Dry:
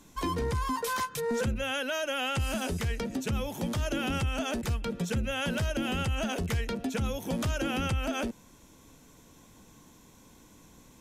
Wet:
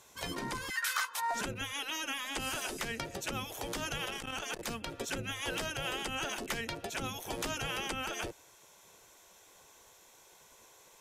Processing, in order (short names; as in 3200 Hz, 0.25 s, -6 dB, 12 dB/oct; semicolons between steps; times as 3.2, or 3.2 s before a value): spectral gate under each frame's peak -10 dB weak; 0.69–1.33 resonant high-pass 2100 Hz -> 680 Hz; 4.04–4.67 core saturation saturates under 660 Hz; gain +1 dB